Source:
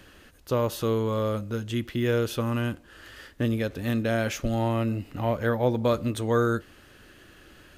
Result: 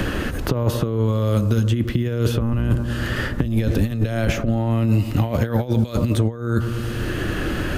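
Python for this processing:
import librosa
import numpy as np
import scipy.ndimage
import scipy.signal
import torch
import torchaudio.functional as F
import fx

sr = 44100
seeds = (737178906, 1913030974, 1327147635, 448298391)

y = fx.octave_divider(x, sr, octaves=1, level_db=-1.0, at=(2.38, 4.32))
y = fx.echo_bbd(y, sr, ms=109, stages=1024, feedback_pct=60, wet_db=-17.0)
y = fx.over_compress(y, sr, threshold_db=-29.0, ratio=-0.5)
y = fx.low_shelf(y, sr, hz=300.0, db=10.0)
y = fx.band_squash(y, sr, depth_pct=100)
y = F.gain(torch.from_numpy(y), 3.5).numpy()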